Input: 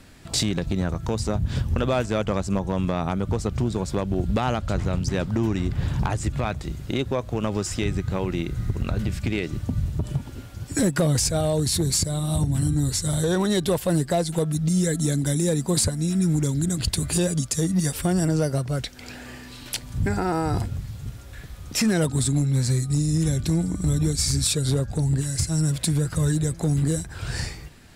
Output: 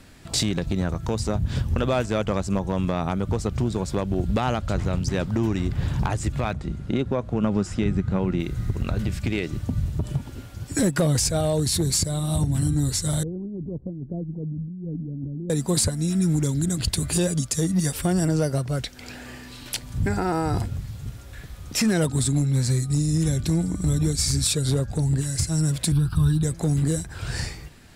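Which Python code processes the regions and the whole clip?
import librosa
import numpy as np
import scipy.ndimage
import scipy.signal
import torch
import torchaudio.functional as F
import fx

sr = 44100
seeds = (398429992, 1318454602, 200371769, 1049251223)

y = fx.chain(x, sr, fx.steep_lowpass(hz=12000.0, slope=96),
    fx.high_shelf(hz=2800.0, db=-10.5),
    fx.small_body(hz=(200.0, 1400.0), ring_ms=45, db=7), at=(6.53, 8.4))
y = fx.chain(y, sr, fx.ladder_lowpass(hz=390.0, resonance_pct=25),
    fx.over_compress(threshold_db=-31.0, ratio=-1.0), at=(13.23, 15.5))
y = fx.chain(y, sr, fx.low_shelf(hz=100.0, db=10.5),
    fx.fixed_phaser(hz=2000.0, stages=6), at=(25.92, 26.43))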